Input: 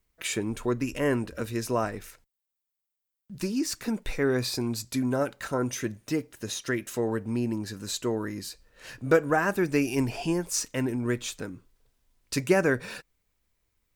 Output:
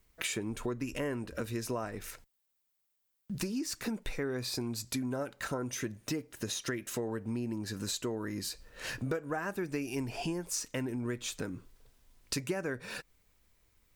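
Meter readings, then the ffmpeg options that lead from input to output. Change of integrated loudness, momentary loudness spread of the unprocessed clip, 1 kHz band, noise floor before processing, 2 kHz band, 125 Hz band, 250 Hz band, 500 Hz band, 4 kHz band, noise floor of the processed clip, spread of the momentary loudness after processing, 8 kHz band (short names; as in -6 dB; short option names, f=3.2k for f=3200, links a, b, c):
-8.0 dB, 12 LU, -9.5 dB, -85 dBFS, -8.0 dB, -6.5 dB, -7.5 dB, -9.5 dB, -3.5 dB, -79 dBFS, 6 LU, -4.0 dB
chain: -af "acompressor=threshold=-40dB:ratio=5,volume=6dB"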